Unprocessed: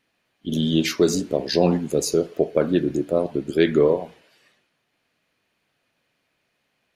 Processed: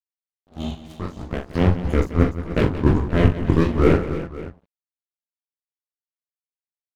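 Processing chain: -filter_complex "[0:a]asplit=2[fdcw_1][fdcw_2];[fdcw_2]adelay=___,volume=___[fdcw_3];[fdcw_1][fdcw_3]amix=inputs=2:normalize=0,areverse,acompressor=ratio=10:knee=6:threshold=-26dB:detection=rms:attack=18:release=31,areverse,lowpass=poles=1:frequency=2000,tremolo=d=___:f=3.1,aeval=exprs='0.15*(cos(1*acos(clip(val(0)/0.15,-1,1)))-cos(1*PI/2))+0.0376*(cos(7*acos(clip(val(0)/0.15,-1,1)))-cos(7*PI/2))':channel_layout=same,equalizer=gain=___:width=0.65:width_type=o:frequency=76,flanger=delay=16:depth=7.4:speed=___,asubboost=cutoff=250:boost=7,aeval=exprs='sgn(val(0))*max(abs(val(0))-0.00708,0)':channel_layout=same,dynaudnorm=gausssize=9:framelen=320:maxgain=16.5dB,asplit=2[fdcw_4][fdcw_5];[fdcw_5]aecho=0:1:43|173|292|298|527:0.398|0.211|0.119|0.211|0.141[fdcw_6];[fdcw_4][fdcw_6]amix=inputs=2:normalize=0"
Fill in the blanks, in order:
16, -10dB, 0.7, 10.5, 1.6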